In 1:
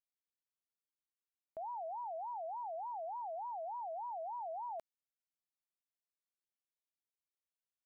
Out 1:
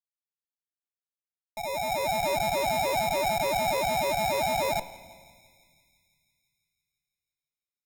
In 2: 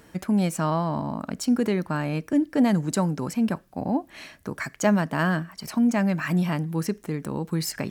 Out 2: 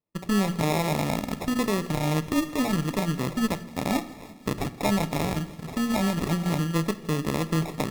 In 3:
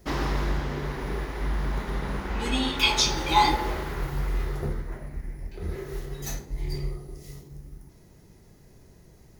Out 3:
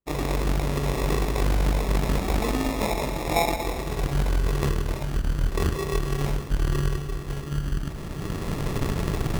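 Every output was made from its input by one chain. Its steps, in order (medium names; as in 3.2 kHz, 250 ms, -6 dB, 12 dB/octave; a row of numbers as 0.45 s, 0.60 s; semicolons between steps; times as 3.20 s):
recorder AGC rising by 12 dB/s; hum notches 60/120/180/240/300/360 Hz; low-pass that closes with the level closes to 2 kHz, closed at -13.5 dBFS; expander -32 dBFS; treble shelf 4.9 kHz -4 dB; in parallel at +0.5 dB: peak limiter -17.5 dBFS; on the sum: wow and flutter 26 cents; sample-and-hold 29×; thinning echo 168 ms, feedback 74%, high-pass 790 Hz, level -18 dB; Chebyshev shaper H 2 -8 dB, 7 -31 dB, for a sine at -5 dBFS; simulated room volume 1800 m³, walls mixed, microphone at 0.34 m; normalise loudness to -27 LUFS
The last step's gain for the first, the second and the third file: -15.5 dB, -9.0 dB, -6.5 dB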